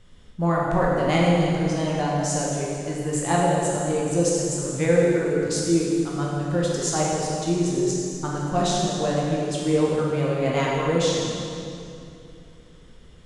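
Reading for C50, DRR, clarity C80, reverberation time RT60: -1.5 dB, -4.5 dB, 0.0 dB, 2.7 s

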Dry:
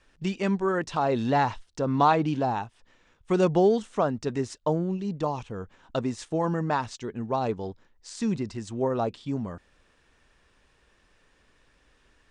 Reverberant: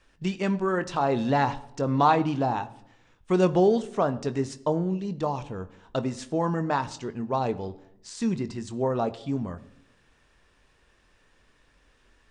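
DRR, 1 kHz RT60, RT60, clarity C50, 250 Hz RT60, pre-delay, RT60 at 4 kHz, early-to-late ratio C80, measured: 10.5 dB, 0.70 s, 0.80 s, 17.5 dB, 0.90 s, 22 ms, 0.55 s, 20.0 dB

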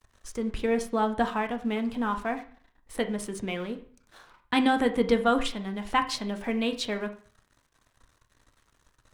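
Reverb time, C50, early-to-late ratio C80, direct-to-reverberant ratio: 0.45 s, 13.0 dB, 17.0 dB, 6.5 dB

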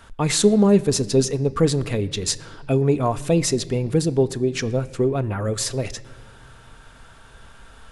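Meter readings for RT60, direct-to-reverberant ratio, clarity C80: 1.7 s, 11.0 dB, 20.0 dB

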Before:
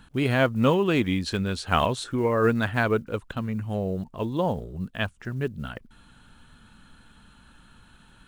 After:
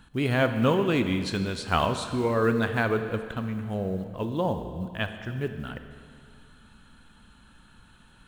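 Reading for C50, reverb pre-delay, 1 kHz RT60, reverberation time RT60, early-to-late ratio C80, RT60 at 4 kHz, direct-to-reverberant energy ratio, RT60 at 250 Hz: 9.0 dB, 28 ms, 2.2 s, 2.2 s, 10.0 dB, 2.1 s, 8.0 dB, 2.2 s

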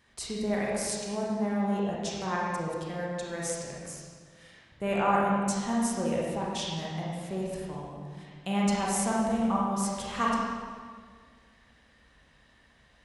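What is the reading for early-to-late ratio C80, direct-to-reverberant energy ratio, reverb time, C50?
0.5 dB, -5.0 dB, 1.8 s, -1.5 dB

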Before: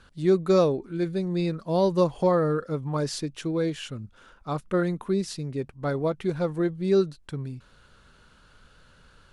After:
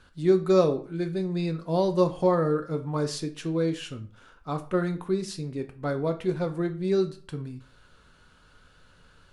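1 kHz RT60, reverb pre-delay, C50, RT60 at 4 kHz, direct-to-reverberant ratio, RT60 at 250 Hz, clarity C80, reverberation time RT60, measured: 0.45 s, 3 ms, 14.5 dB, 0.30 s, 6.0 dB, 0.40 s, 19.0 dB, 0.45 s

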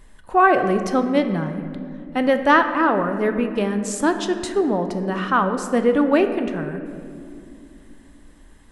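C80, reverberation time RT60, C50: 10.0 dB, 2.4 s, 8.5 dB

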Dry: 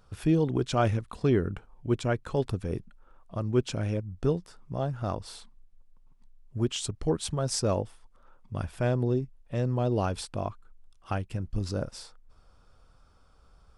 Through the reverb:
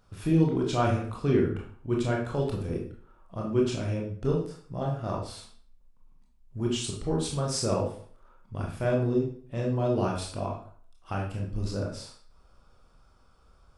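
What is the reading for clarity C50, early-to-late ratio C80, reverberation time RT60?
4.5 dB, 9.0 dB, 0.50 s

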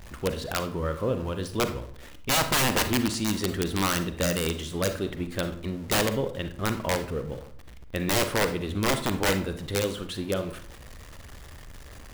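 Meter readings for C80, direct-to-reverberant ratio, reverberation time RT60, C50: 15.0 dB, 8.5 dB, 0.55 s, 11.0 dB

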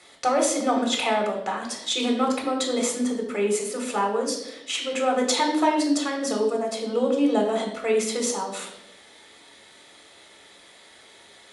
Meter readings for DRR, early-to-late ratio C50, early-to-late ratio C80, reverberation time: 0.5 dB, 6.0 dB, 8.5 dB, 0.85 s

